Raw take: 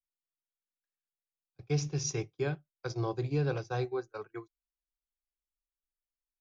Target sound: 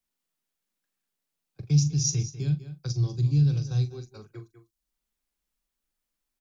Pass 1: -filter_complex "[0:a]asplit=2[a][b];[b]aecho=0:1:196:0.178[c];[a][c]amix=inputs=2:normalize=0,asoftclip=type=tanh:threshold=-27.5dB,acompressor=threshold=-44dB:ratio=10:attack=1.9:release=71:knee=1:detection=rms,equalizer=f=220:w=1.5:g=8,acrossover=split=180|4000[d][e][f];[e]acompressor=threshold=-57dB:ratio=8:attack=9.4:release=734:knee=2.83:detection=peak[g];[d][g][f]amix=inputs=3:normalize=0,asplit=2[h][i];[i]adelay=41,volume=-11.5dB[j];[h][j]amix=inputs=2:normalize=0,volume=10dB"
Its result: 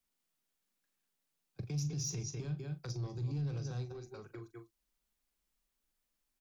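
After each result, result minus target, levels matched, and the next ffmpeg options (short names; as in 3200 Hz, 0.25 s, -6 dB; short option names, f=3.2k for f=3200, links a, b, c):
compressor: peak gain reduction +14.5 dB; soft clip: distortion +15 dB
-filter_complex "[0:a]asplit=2[a][b];[b]aecho=0:1:196:0.178[c];[a][c]amix=inputs=2:normalize=0,asoftclip=type=tanh:threshold=-27.5dB,equalizer=f=220:w=1.5:g=8,acrossover=split=180|4000[d][e][f];[e]acompressor=threshold=-57dB:ratio=8:attack=9.4:release=734:knee=2.83:detection=peak[g];[d][g][f]amix=inputs=3:normalize=0,asplit=2[h][i];[i]adelay=41,volume=-11.5dB[j];[h][j]amix=inputs=2:normalize=0,volume=10dB"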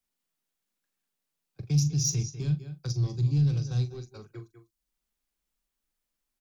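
soft clip: distortion +15 dB
-filter_complex "[0:a]asplit=2[a][b];[b]aecho=0:1:196:0.178[c];[a][c]amix=inputs=2:normalize=0,asoftclip=type=tanh:threshold=-17.5dB,equalizer=f=220:w=1.5:g=8,acrossover=split=180|4000[d][e][f];[e]acompressor=threshold=-57dB:ratio=8:attack=9.4:release=734:knee=2.83:detection=peak[g];[d][g][f]amix=inputs=3:normalize=0,asplit=2[h][i];[i]adelay=41,volume=-11.5dB[j];[h][j]amix=inputs=2:normalize=0,volume=10dB"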